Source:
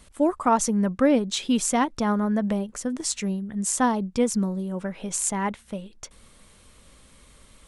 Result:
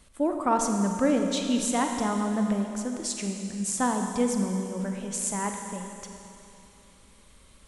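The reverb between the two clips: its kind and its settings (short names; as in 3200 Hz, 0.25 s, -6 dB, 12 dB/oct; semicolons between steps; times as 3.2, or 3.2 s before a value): Schroeder reverb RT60 2.8 s, combs from 33 ms, DRR 3.5 dB; gain -4.5 dB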